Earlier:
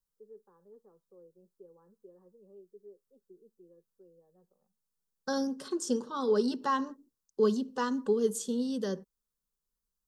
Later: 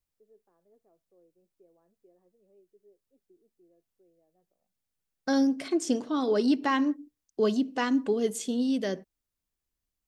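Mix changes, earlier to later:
first voice -9.5 dB; master: remove fixed phaser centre 450 Hz, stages 8

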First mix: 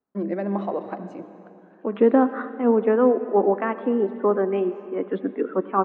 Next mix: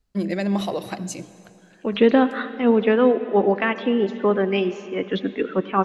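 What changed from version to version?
first voice: send -6.0 dB; master: remove Chebyshev band-pass 260–1200 Hz, order 2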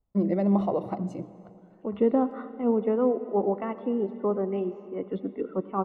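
second voice -7.0 dB; master: add polynomial smoothing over 65 samples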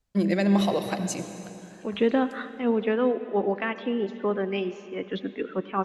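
first voice: send +8.5 dB; master: remove polynomial smoothing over 65 samples

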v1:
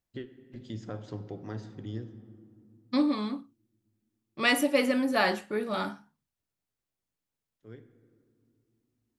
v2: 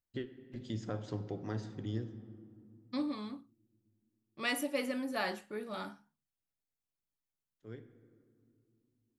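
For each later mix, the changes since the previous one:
second voice -10.0 dB; master: add high shelf 7700 Hz +5 dB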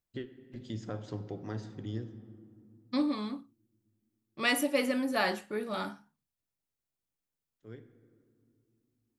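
second voice +6.0 dB

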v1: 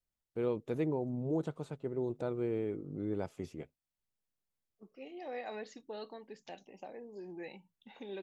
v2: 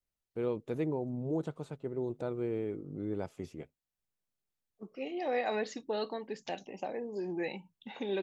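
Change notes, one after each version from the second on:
second voice +9.5 dB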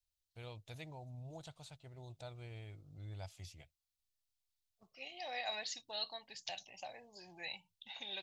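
second voice: add bell 1100 Hz +3.5 dB 0.21 oct; master: add EQ curve 100 Hz 0 dB, 200 Hz -22 dB, 430 Hz -26 dB, 670 Hz -7 dB, 1200 Hz -13 dB, 4100 Hz +7 dB, 7600 Hz +3 dB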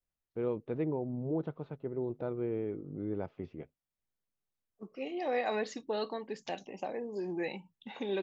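first voice: add Gaussian blur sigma 2.7 samples; master: remove EQ curve 100 Hz 0 dB, 200 Hz -22 dB, 430 Hz -26 dB, 670 Hz -7 dB, 1200 Hz -13 dB, 4100 Hz +7 dB, 7600 Hz +3 dB

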